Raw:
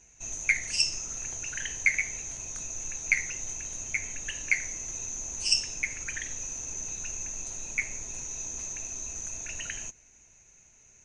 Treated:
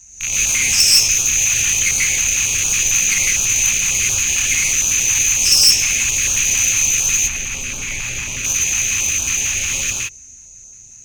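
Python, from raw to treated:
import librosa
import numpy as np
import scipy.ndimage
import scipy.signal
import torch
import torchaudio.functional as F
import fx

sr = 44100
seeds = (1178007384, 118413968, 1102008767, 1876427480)

y = fx.rattle_buzz(x, sr, strikes_db=-55.0, level_db=-15.0)
y = fx.bass_treble(y, sr, bass_db=9, treble_db=10)
y = fx.rev_gated(y, sr, seeds[0], gate_ms=190, shape='rising', drr_db=-5.5)
y = fx.tube_stage(y, sr, drive_db=12.0, bias=0.3)
y = fx.high_shelf(y, sr, hz=3500.0, db=fx.steps((0.0, 9.0), (7.27, -3.0), (8.43, 5.5)))
y = fx.filter_held_notch(y, sr, hz=11.0, low_hz=440.0, high_hz=2000.0)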